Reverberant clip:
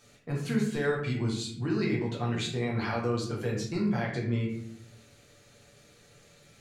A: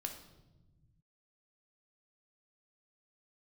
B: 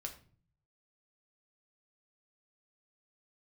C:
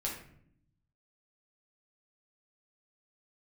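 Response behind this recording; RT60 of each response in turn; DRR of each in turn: C; 1.1 s, 0.45 s, 0.65 s; 2.5 dB, 2.5 dB, -3.5 dB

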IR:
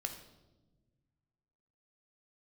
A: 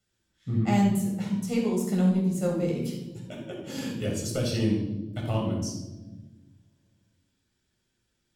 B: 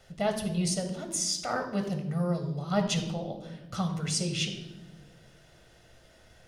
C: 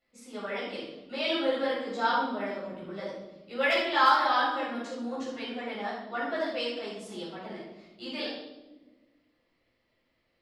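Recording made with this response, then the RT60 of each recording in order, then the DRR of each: B; no single decay rate, no single decay rate, 1.2 s; -2.0 dB, 5.0 dB, -9.5 dB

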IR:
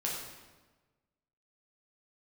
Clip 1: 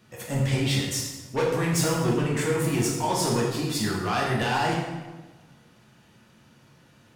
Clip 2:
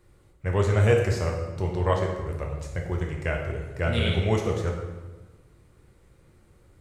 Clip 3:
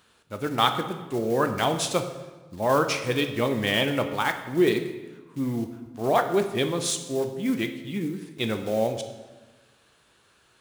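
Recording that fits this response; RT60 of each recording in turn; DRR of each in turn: 1; 1.3 s, 1.3 s, 1.3 s; -4.0 dB, 0.0 dB, 6.5 dB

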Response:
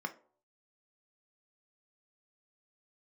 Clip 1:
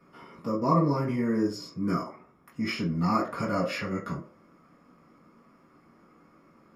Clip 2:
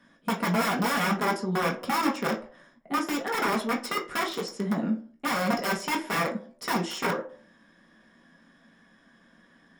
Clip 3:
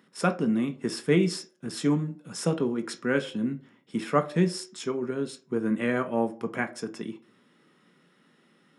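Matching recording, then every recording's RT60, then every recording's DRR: 3; 0.55 s, 0.55 s, 0.55 s; -7.0 dB, -1.0 dB, 6.0 dB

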